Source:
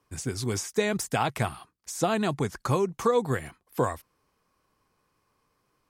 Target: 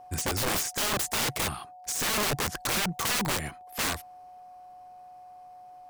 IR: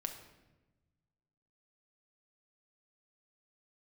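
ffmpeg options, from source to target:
-af "aeval=exprs='val(0)+0.00282*sin(2*PI*730*n/s)':c=same,aeval=exprs='(mod(25.1*val(0)+1,2)-1)/25.1':c=same,tremolo=f=160:d=0.261,volume=6.5dB"

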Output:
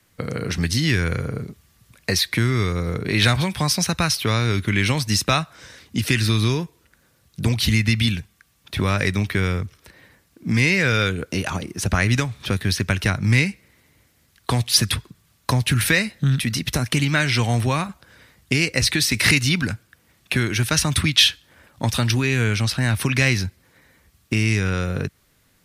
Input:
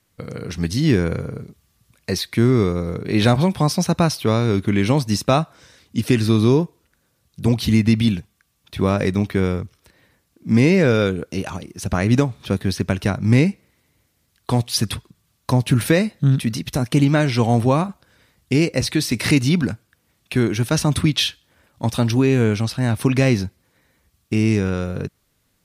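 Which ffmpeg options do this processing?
-filter_complex "[0:a]equalizer=f=1.8k:w=1.5:g=3.5,acrossover=split=100|1400|2200[a][b][c][d];[b]acompressor=threshold=-28dB:ratio=6[e];[a][e][c][d]amix=inputs=4:normalize=0,volume=5dB"

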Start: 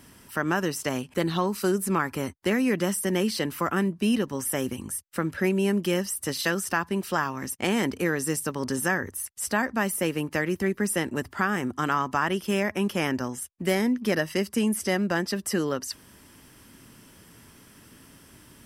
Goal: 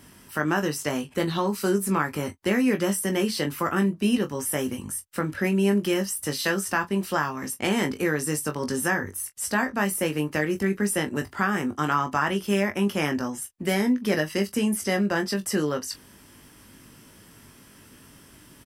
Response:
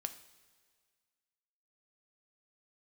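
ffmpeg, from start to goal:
-af "aecho=1:1:20|42:0.501|0.141"

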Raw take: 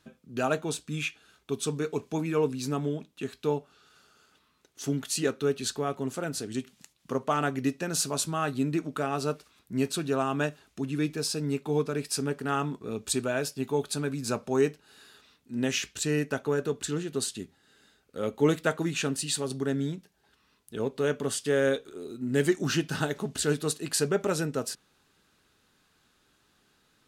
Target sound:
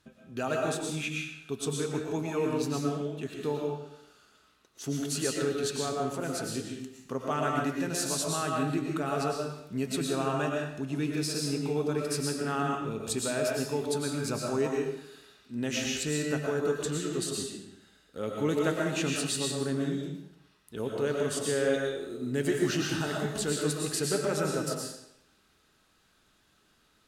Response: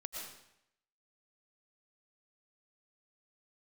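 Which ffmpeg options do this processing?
-filter_complex "[0:a]equalizer=f=65:w=1.4:g=5,asplit=2[a][b];[b]alimiter=limit=-20.5dB:level=0:latency=1,volume=-2dB[c];[a][c]amix=inputs=2:normalize=0[d];[1:a]atrim=start_sample=2205[e];[d][e]afir=irnorm=-1:irlink=0,volume=-3.5dB" -ar 44100 -c:a sbc -b:a 192k

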